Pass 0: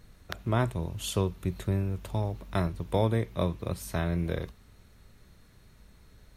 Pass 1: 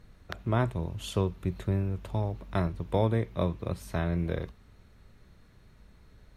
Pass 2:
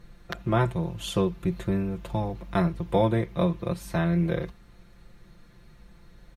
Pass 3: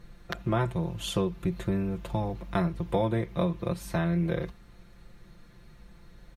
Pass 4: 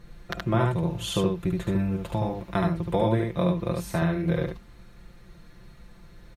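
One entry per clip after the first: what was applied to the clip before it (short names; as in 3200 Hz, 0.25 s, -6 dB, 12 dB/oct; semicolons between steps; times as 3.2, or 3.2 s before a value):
high shelf 5100 Hz -10.5 dB
comb 5.8 ms, depth 79%; gain +2.5 dB
compressor 2:1, threshold -25 dBFS, peak gain reduction 5 dB
echo 73 ms -3 dB; gain +1.5 dB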